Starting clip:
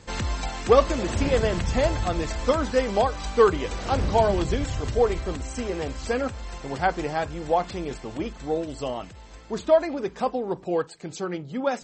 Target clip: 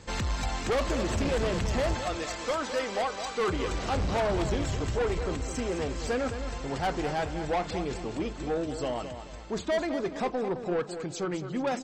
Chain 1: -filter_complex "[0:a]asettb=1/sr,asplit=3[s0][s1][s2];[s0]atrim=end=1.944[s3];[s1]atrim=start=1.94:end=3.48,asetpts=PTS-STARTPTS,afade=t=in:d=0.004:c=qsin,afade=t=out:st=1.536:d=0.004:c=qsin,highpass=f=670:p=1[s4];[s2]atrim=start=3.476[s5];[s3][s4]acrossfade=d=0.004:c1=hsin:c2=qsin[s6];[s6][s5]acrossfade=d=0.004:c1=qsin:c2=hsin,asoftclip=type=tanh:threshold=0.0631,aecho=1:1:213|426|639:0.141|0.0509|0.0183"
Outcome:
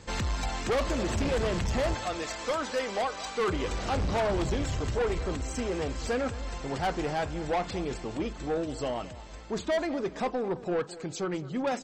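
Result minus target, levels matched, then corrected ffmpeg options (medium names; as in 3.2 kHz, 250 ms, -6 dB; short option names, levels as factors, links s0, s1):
echo-to-direct -7.5 dB
-filter_complex "[0:a]asettb=1/sr,asplit=3[s0][s1][s2];[s0]atrim=end=1.944[s3];[s1]atrim=start=1.94:end=3.48,asetpts=PTS-STARTPTS,afade=t=in:d=0.004:c=qsin,afade=t=out:st=1.536:d=0.004:c=qsin,highpass=f=670:p=1[s4];[s2]atrim=start=3.476[s5];[s3][s4]acrossfade=d=0.004:c1=hsin:c2=qsin[s6];[s6][s5]acrossfade=d=0.004:c1=qsin:c2=hsin,asoftclip=type=tanh:threshold=0.0631,aecho=1:1:213|426|639|852:0.335|0.121|0.0434|0.0156"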